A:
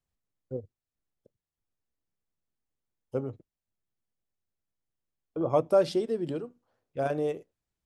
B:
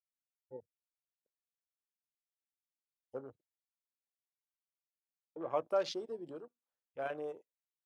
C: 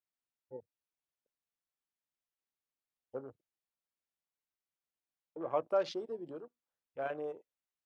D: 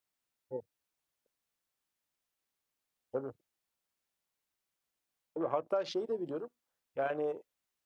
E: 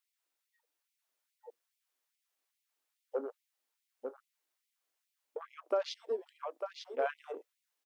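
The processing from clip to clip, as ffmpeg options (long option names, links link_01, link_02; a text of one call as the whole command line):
ffmpeg -i in.wav -af "highpass=frequency=1400:poles=1,afwtdn=0.00316,volume=-1.5dB" out.wav
ffmpeg -i in.wav -af "highshelf=frequency=4600:gain=-10.5,volume=1.5dB" out.wav
ffmpeg -i in.wav -af "acompressor=threshold=-36dB:ratio=6,volume=7dB" out.wav
ffmpeg -i in.wav -af "aecho=1:1:899:0.501,afftfilt=real='re*gte(b*sr/1024,230*pow(2000/230,0.5+0.5*sin(2*PI*2.4*pts/sr)))':imag='im*gte(b*sr/1024,230*pow(2000/230,0.5+0.5*sin(2*PI*2.4*pts/sr)))':win_size=1024:overlap=0.75,volume=1dB" out.wav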